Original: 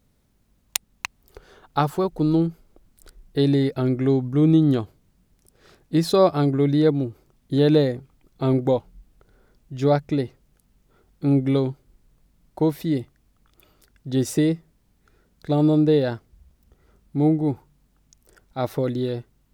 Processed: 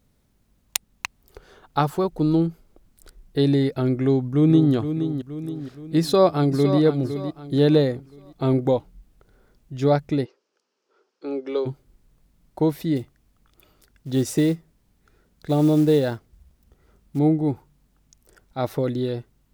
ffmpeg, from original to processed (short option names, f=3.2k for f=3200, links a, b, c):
-filter_complex "[0:a]asplit=2[a][b];[b]afade=t=in:st=4.02:d=0.01,afade=t=out:st=4.74:d=0.01,aecho=0:1:470|940|1410|1880|2350|2820:0.354813|0.177407|0.0887033|0.0443517|0.0221758|0.0110879[c];[a][c]amix=inputs=2:normalize=0,asplit=2[d][e];[e]afade=t=in:st=6:d=0.01,afade=t=out:st=6.79:d=0.01,aecho=0:1:510|1020|1530|2040:0.334965|0.117238|0.0410333|0.0143616[f];[d][f]amix=inputs=2:normalize=0,asplit=3[g][h][i];[g]afade=t=out:st=10.24:d=0.02[j];[h]highpass=f=390:w=0.5412,highpass=f=390:w=1.3066,equalizer=f=400:t=q:w=4:g=3,equalizer=f=710:t=q:w=4:g=-8,equalizer=f=2k:t=q:w=4:g=-7,equalizer=f=3.6k:t=q:w=4:g=-6,equalizer=f=5.3k:t=q:w=4:g=4,lowpass=f=5.9k:w=0.5412,lowpass=f=5.9k:w=1.3066,afade=t=in:st=10.24:d=0.02,afade=t=out:st=11.65:d=0.02[k];[i]afade=t=in:st=11.65:d=0.02[l];[j][k][l]amix=inputs=3:normalize=0,asettb=1/sr,asplit=3[m][n][o];[m]atrim=end=12.964[p];[n]atrim=start=12.96:end=17.19,asetpts=PTS-STARTPTS,afade=t=in:d=0.004:c=qsin,afade=t=out:st=4.226:d=0.004:c=qsin,acrusher=bits=7:mode=log:mix=0:aa=0.000001[q];[o]atrim=start=17.186[r];[p][q]acrossfade=d=0.004:c1=hsin:c2=qsin[s];[s][r]acrossfade=d=0.004:c1=qsin:c2=hsin"